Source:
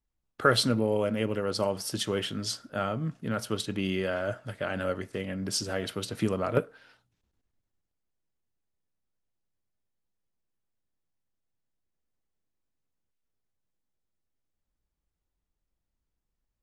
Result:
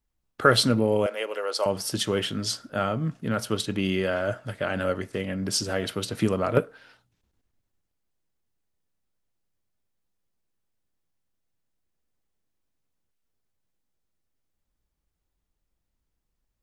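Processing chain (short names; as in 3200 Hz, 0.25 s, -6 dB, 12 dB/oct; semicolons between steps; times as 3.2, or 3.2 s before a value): 1.06–1.66 HPF 480 Hz 24 dB/oct; gain +4 dB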